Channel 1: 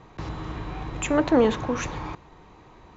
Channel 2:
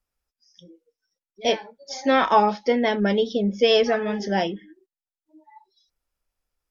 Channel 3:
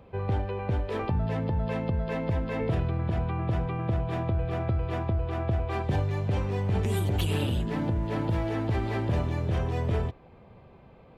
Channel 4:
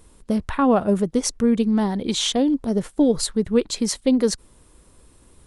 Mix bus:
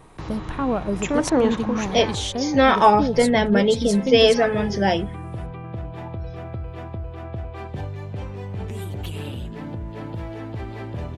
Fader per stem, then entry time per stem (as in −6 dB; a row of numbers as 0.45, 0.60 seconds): 0.0, +3.0, −4.0, −6.0 decibels; 0.00, 0.50, 1.85, 0.00 seconds